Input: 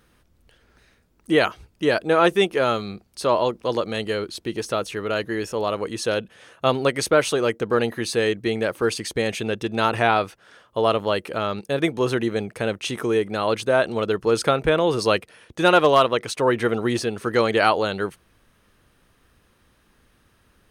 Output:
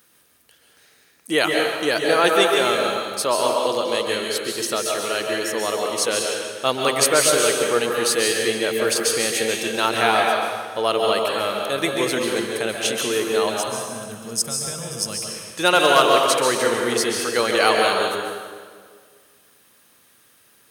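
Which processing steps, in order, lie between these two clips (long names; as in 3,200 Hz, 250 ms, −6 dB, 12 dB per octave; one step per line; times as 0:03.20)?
high-pass filter 88 Hz
RIAA equalisation recording
gain on a spectral selection 0:13.50–0:15.18, 240–4,800 Hz −17 dB
low-shelf EQ 370 Hz +4.5 dB
on a send: echo with a time of its own for lows and highs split 920 Hz, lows 198 ms, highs 151 ms, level −15 dB
on the sum: dense smooth reverb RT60 1.5 s, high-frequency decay 0.8×, pre-delay 120 ms, DRR 0 dB
level −1.5 dB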